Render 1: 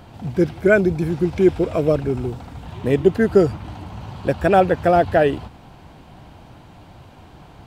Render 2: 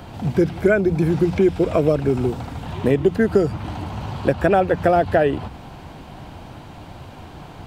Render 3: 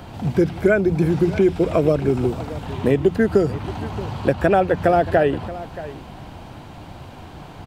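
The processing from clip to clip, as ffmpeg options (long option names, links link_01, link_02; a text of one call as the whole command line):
ffmpeg -i in.wav -filter_complex "[0:a]bandreject=frequency=60:width_type=h:width=6,bandreject=frequency=120:width_type=h:width=6,bandreject=frequency=180:width_type=h:width=6,acrossover=split=86|2800[link_01][link_02][link_03];[link_01]acompressor=threshold=-41dB:ratio=4[link_04];[link_02]acompressor=threshold=-20dB:ratio=4[link_05];[link_03]acompressor=threshold=-51dB:ratio=4[link_06];[link_04][link_05][link_06]amix=inputs=3:normalize=0,volume=6dB" out.wav
ffmpeg -i in.wav -af "aecho=1:1:627:0.158" out.wav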